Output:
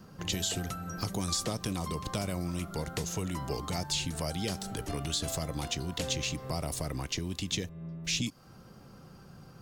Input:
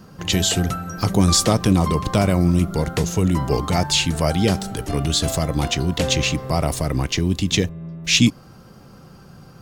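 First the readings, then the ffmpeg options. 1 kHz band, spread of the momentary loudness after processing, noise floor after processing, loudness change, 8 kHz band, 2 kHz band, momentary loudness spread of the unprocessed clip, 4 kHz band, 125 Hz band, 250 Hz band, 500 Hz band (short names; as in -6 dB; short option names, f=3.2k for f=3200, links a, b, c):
-14.0 dB, 9 LU, -53 dBFS, -14.0 dB, -11.0 dB, -14.0 dB, 7 LU, -12.5 dB, -15.5 dB, -16.5 dB, -15.0 dB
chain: -filter_complex "[0:a]acrossover=split=600|3500[a][b][c];[a]acompressor=threshold=-26dB:ratio=4[d];[b]acompressor=threshold=-33dB:ratio=4[e];[c]acompressor=threshold=-24dB:ratio=4[f];[d][e][f]amix=inputs=3:normalize=0,volume=-7.5dB"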